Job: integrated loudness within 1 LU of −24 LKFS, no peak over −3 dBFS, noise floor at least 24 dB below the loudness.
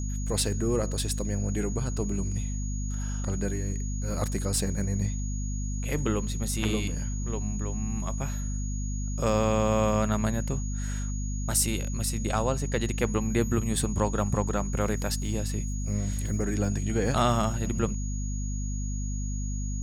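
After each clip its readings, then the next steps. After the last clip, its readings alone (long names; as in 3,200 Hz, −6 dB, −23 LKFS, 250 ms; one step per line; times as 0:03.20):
mains hum 50 Hz; hum harmonics up to 250 Hz; level of the hum −28 dBFS; interfering tone 6,700 Hz; level of the tone −41 dBFS; integrated loudness −29.5 LKFS; sample peak −11.0 dBFS; target loudness −24.0 LKFS
→ mains-hum notches 50/100/150/200/250 Hz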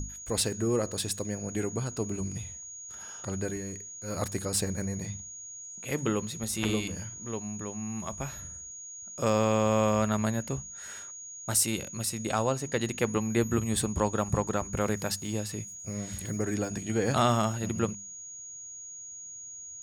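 mains hum none found; interfering tone 6,700 Hz; level of the tone −41 dBFS
→ notch filter 6,700 Hz, Q 30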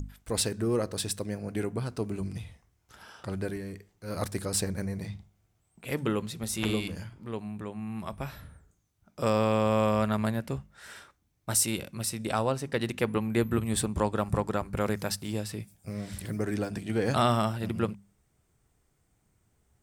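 interfering tone none found; integrated loudness −30.5 LKFS; sample peak −12.5 dBFS; target loudness −24.0 LKFS
→ level +6.5 dB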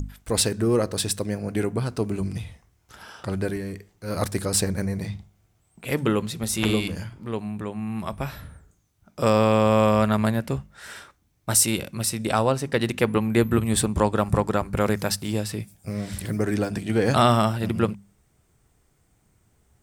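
integrated loudness −24.0 LKFS; sample peak −6.0 dBFS; background noise floor −66 dBFS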